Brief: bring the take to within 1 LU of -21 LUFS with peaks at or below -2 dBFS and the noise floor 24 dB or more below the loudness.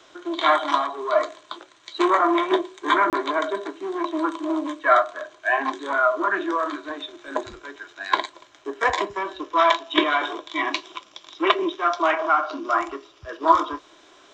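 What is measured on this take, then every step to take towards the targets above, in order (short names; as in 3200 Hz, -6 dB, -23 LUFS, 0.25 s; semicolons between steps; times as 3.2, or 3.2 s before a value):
dropouts 1; longest dropout 28 ms; loudness -23.0 LUFS; peak -2.0 dBFS; loudness target -21.0 LUFS
-> interpolate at 3.1, 28 ms; gain +2 dB; limiter -2 dBFS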